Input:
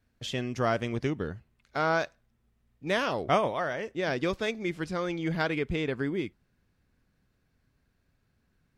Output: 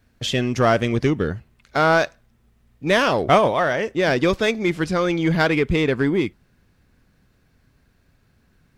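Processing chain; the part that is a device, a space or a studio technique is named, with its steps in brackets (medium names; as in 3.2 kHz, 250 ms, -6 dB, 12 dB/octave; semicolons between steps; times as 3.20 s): parallel distortion (in parallel at -6 dB: hard clipper -28 dBFS, distortion -8 dB); on the sum: trim +8 dB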